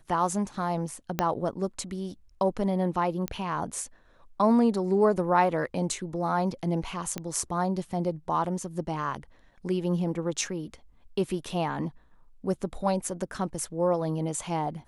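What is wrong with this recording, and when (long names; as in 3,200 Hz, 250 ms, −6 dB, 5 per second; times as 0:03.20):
0:01.19: click −10 dBFS
0:03.28: click −15 dBFS
0:07.18: click −17 dBFS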